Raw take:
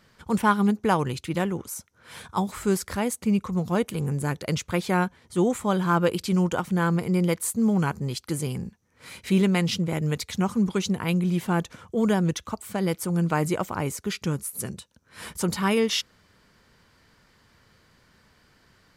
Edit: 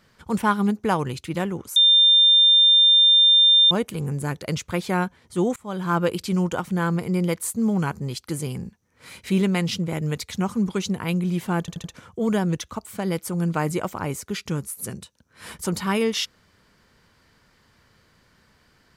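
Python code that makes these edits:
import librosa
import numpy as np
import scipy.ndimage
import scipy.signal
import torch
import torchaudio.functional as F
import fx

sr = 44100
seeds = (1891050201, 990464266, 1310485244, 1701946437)

y = fx.edit(x, sr, fx.bleep(start_s=1.76, length_s=1.95, hz=3600.0, db=-11.5),
    fx.fade_in_from(start_s=5.56, length_s=0.38, floor_db=-24.0),
    fx.stutter(start_s=11.6, slice_s=0.08, count=4), tone=tone)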